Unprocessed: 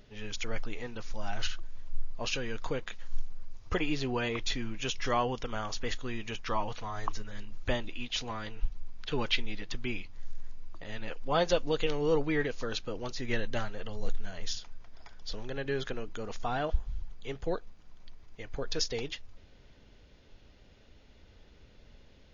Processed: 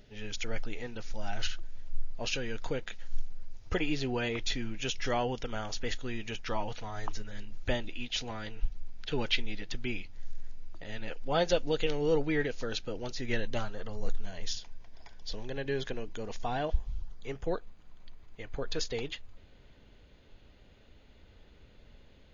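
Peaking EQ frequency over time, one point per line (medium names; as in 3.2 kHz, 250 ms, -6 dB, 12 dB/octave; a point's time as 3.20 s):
peaking EQ -11.5 dB 0.24 oct
13.37 s 1.1 kHz
14.03 s 4 kHz
14.30 s 1.3 kHz
16.80 s 1.3 kHz
17.56 s 5.5 kHz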